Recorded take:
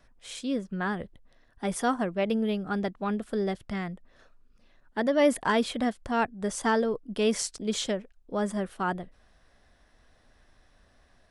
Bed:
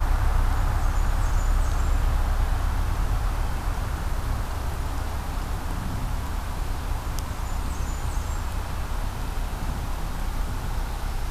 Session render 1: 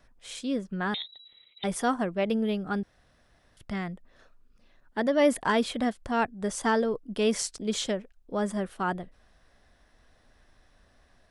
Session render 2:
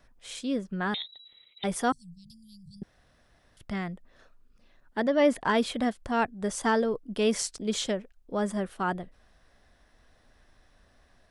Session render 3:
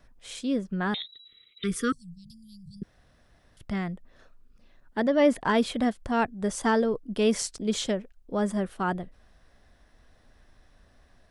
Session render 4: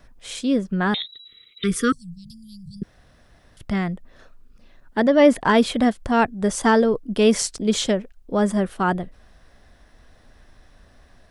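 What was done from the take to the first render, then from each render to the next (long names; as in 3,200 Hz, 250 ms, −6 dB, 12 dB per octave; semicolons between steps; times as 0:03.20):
0:00.94–0:01.64: voice inversion scrambler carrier 3,900 Hz; 0:02.83–0:03.57: fill with room tone
0:01.92–0:02.82: Chebyshev band-stop filter 160–4,400 Hz, order 5; 0:05.02–0:05.55: high-frequency loss of the air 56 metres
0:01.00–0:02.84: time-frequency box erased 500–1,100 Hz; low-shelf EQ 350 Hz +4 dB
level +7 dB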